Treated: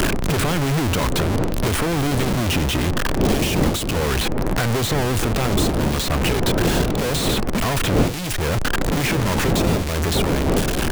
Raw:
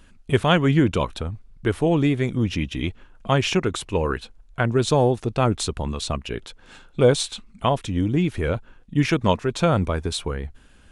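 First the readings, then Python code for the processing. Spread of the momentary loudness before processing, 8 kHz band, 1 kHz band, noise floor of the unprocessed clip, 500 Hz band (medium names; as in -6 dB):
12 LU, +8.0 dB, +2.0 dB, -52 dBFS, 0.0 dB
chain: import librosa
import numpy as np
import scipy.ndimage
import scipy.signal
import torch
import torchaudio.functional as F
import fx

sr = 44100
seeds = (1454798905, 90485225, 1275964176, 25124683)

y = np.sign(x) * np.sqrt(np.mean(np.square(x)))
y = fx.dmg_wind(y, sr, seeds[0], corner_hz=360.0, level_db=-21.0)
y = fx.band_squash(y, sr, depth_pct=100)
y = F.gain(torch.from_numpy(y), -1.0).numpy()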